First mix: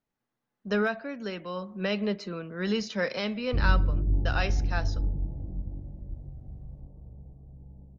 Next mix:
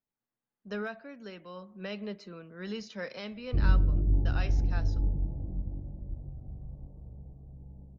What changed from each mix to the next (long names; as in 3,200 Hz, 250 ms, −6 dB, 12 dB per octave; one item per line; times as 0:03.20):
speech −9.5 dB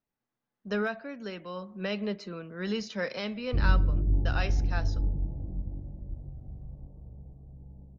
speech +6.0 dB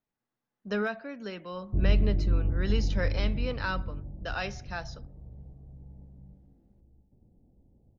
background: entry −1.80 s